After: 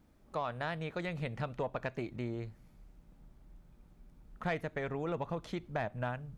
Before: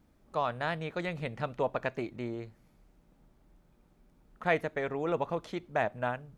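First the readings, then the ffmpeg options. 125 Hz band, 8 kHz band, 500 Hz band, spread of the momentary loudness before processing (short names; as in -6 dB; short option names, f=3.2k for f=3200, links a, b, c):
+0.5 dB, n/a, -5.5 dB, 7 LU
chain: -af "asoftclip=type=tanh:threshold=-17dB,acompressor=threshold=-35dB:ratio=2,asubboost=boost=2:cutoff=220"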